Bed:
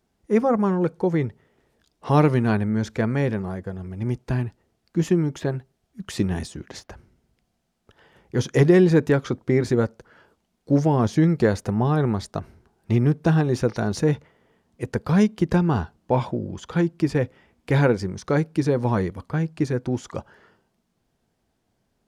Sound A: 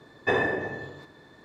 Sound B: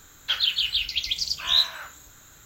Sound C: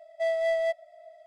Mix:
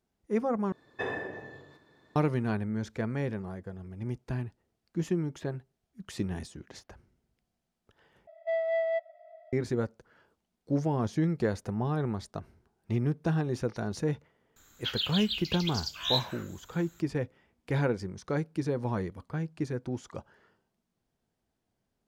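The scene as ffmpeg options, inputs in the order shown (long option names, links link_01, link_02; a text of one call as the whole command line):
ffmpeg -i bed.wav -i cue0.wav -i cue1.wav -i cue2.wav -filter_complex "[0:a]volume=-9.5dB[link_01];[3:a]highpass=460,lowpass=2100[link_02];[link_01]asplit=3[link_03][link_04][link_05];[link_03]atrim=end=0.724[link_06];[1:a]atrim=end=1.44,asetpts=PTS-STARTPTS,volume=-10dB[link_07];[link_04]atrim=start=2.156:end=8.274[link_08];[link_02]atrim=end=1.26,asetpts=PTS-STARTPTS,volume=-1.5dB[link_09];[link_05]atrim=start=9.526[link_10];[2:a]atrim=end=2.45,asetpts=PTS-STARTPTS,volume=-9dB,afade=type=in:duration=0.004:curve=hsin,afade=type=out:start_time=2.446:duration=0.004:curve=hsin,adelay=14560[link_11];[link_06][link_07]acrossfade=duration=0.004:curve1=hsin:curve2=hsin[link_12];[link_12][link_08]acrossfade=duration=0.004:curve1=hsin:curve2=hsin[link_13];[link_13][link_09]acrossfade=duration=0.004:curve1=hsin:curve2=hsin[link_14];[link_14][link_10]acrossfade=duration=0.004:curve1=hsin:curve2=hsin[link_15];[link_15][link_11]amix=inputs=2:normalize=0" out.wav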